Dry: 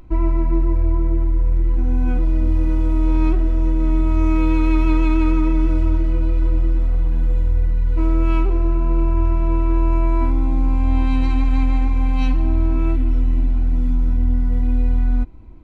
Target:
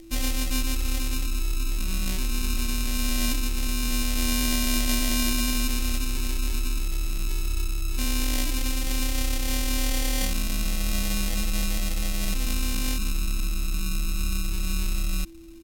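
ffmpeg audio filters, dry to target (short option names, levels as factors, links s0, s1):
-af "lowpass=3500,acrusher=samples=26:mix=1:aa=0.000001,aexciter=amount=5.5:drive=1.3:freq=2600,aeval=exprs='val(0)+0.0178*sin(2*PI*430*n/s)':c=same,asetrate=34006,aresample=44100,atempo=1.29684,volume=0.355"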